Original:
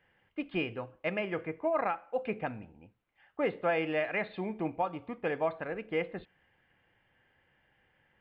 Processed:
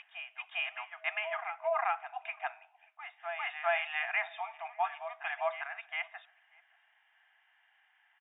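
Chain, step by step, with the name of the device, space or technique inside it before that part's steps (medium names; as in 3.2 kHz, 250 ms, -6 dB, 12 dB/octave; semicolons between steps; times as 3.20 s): FFT band-pass 640–3800 Hz; treble shelf 2.1 kHz +9.5 dB; reverse echo 402 ms -9 dB; shout across a valley (distance through air 180 m; echo from a far wall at 100 m, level -25 dB)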